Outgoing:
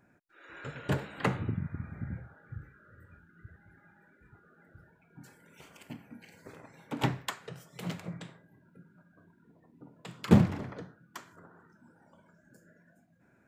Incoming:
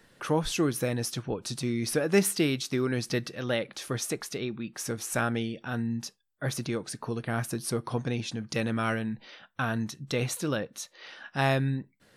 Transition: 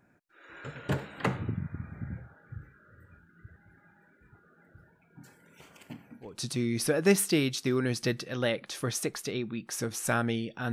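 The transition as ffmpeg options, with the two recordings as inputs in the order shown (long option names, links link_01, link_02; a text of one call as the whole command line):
ffmpeg -i cue0.wav -i cue1.wav -filter_complex "[0:a]apad=whole_dur=10.72,atrim=end=10.72,atrim=end=6.42,asetpts=PTS-STARTPTS[link_01];[1:a]atrim=start=1.19:end=5.79,asetpts=PTS-STARTPTS[link_02];[link_01][link_02]acrossfade=duration=0.3:curve1=qua:curve2=qua" out.wav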